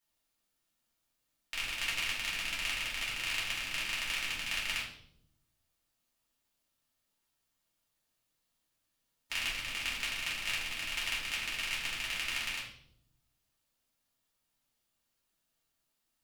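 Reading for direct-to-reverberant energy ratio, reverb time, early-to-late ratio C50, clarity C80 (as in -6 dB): -6.0 dB, 0.70 s, 4.5 dB, 8.5 dB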